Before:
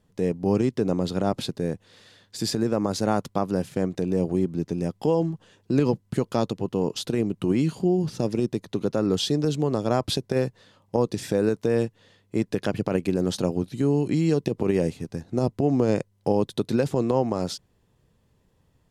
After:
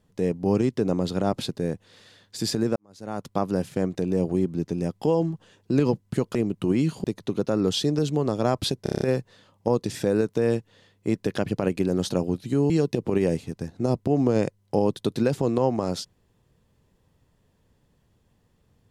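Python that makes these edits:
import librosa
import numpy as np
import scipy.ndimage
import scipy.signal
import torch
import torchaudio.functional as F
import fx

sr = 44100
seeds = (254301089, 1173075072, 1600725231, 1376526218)

y = fx.edit(x, sr, fx.fade_in_span(start_s=2.76, length_s=0.62, curve='qua'),
    fx.cut(start_s=6.35, length_s=0.8),
    fx.cut(start_s=7.84, length_s=0.66),
    fx.stutter(start_s=10.29, slice_s=0.03, count=7),
    fx.cut(start_s=13.98, length_s=0.25), tone=tone)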